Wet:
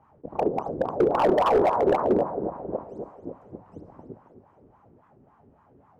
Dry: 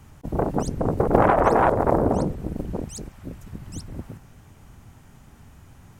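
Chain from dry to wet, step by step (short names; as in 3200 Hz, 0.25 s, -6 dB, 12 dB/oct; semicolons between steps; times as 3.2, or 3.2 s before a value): on a send at -9 dB: reverb RT60 0.60 s, pre-delay 42 ms; on the sum: wah 3.6 Hz 370–1100 Hz, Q 4.4; high shelf 3400 Hz -7.5 dB; notch 3500 Hz, Q 16; thinning echo 0.269 s, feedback 57%, high-pass 240 Hz, level -10.5 dB; hard clip -22.5 dBFS, distortion -10 dB; low shelf 430 Hz +9.5 dB; record warp 78 rpm, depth 160 cents; gain +3.5 dB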